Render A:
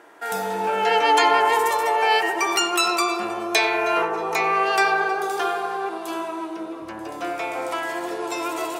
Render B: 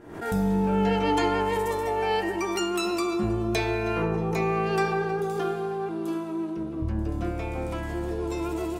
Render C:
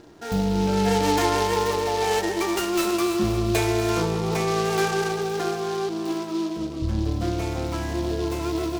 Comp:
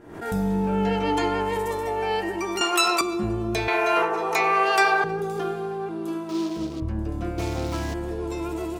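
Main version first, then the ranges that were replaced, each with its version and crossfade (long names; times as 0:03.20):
B
0:02.61–0:03.01: punch in from A
0:03.68–0:05.04: punch in from A
0:06.29–0:06.80: punch in from C
0:07.38–0:07.94: punch in from C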